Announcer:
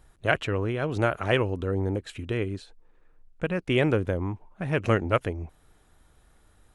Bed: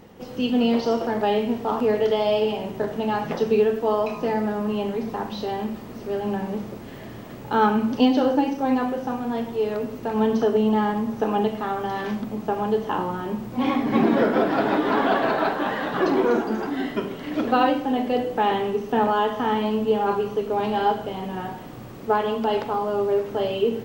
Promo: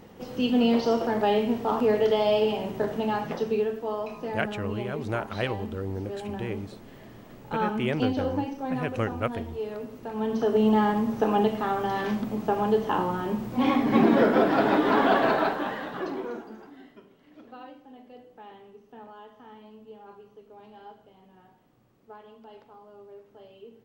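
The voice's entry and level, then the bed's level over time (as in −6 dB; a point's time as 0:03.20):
4.10 s, −5.5 dB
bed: 0:02.93 −1.5 dB
0:03.83 −9 dB
0:10.18 −9 dB
0:10.65 −0.5 dB
0:15.32 −0.5 dB
0:17.04 −25.5 dB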